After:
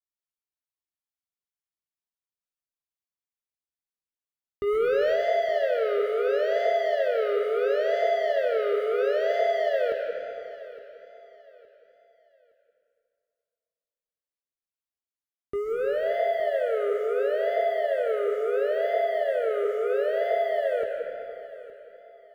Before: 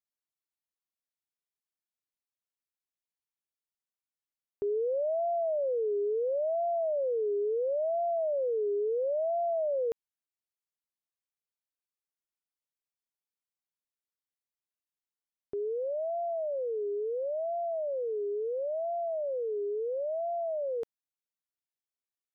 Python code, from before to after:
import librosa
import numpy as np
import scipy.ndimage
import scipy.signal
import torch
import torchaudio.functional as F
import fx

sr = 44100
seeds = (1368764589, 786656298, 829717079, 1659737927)

y = fx.harmonic_tremolo(x, sr, hz=2.2, depth_pct=50, crossover_hz=650.0)
y = fx.leveller(y, sr, passes=3)
y = fx.peak_eq(y, sr, hz=62.0, db=9.0, octaves=1.1)
y = fx.doubler(y, sr, ms=20.0, db=-11.0)
y = fx.echo_feedback(y, sr, ms=865, feedback_pct=31, wet_db=-17)
y = fx.rev_freeverb(y, sr, rt60_s=2.2, hf_ratio=0.75, predelay_ms=95, drr_db=2.0)
y = fx.env_flatten(y, sr, amount_pct=70, at=(4.66, 5.14), fade=0.02)